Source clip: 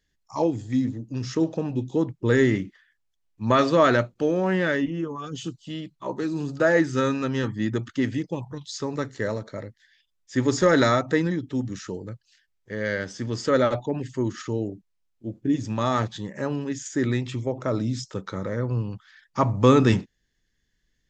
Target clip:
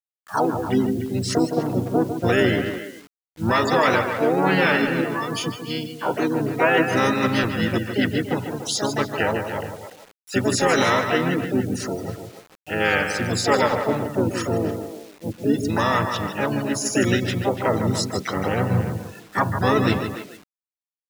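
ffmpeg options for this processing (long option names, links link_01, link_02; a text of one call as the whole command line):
ffmpeg -i in.wav -filter_complex "[0:a]alimiter=limit=-15.5dB:level=0:latency=1:release=293,asplit=2[link_01][link_02];[link_02]aecho=0:1:154:0.398[link_03];[link_01][link_03]amix=inputs=2:normalize=0,afftfilt=real='re*gte(hypot(re,im),0.0141)':imag='im*gte(hypot(re,im),0.0141)':win_size=1024:overlap=0.75,asplit=3[link_04][link_05][link_06];[link_05]asetrate=35002,aresample=44100,atempo=1.25992,volume=-6dB[link_07];[link_06]asetrate=66075,aresample=44100,atempo=0.66742,volume=-5dB[link_08];[link_04][link_07][link_08]amix=inputs=3:normalize=0,asplit=2[link_09][link_10];[link_10]adelay=290,highpass=300,lowpass=3400,asoftclip=type=hard:threshold=-18dB,volume=-10dB[link_11];[link_09][link_11]amix=inputs=2:normalize=0,acrusher=bits=8:mix=0:aa=0.000001,tiltshelf=frequency=850:gain=-4,volume=5.5dB" out.wav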